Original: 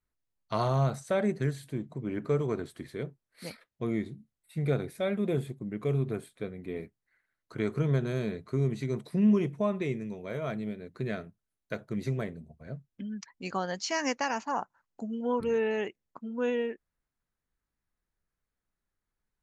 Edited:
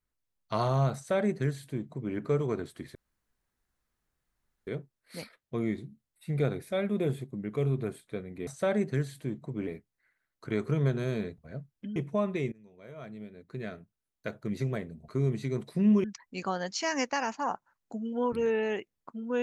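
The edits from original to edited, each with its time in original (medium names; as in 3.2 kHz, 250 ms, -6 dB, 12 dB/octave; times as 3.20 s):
0.95–2.15 s: copy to 6.75 s
2.95 s: insert room tone 1.72 s
8.46–9.42 s: swap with 12.54–13.12 s
9.98–11.94 s: fade in, from -22.5 dB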